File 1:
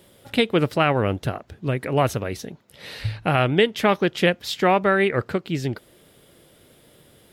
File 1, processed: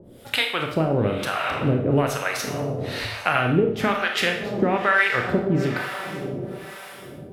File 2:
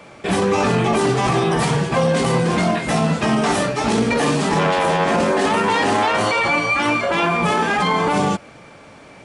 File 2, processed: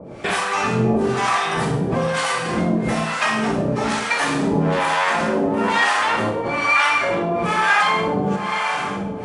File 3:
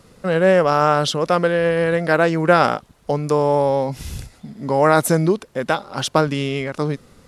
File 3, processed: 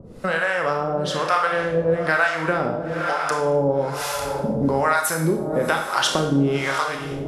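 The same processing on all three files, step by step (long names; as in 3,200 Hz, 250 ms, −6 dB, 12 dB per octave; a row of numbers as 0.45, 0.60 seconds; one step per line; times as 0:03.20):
feedback delay with all-pass diffusion 633 ms, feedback 45%, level −13.5 dB
downward compressor 5 to 1, threshold −25 dBFS
dynamic equaliser 1,500 Hz, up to +5 dB, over −41 dBFS, Q 1.1
two-band tremolo in antiphase 1.1 Hz, depth 100%, crossover 670 Hz
four-comb reverb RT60 0.63 s, combs from 25 ms, DRR 3 dB
level +9 dB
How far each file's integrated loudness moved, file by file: −1.0, −1.5, −3.0 LU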